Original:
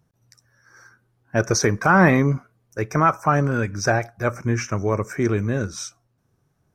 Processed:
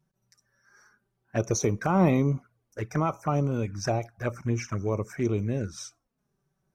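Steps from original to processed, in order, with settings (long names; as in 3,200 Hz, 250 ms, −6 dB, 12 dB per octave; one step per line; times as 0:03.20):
flanger swept by the level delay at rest 5.3 ms, full sweep at −17.5 dBFS
level −5 dB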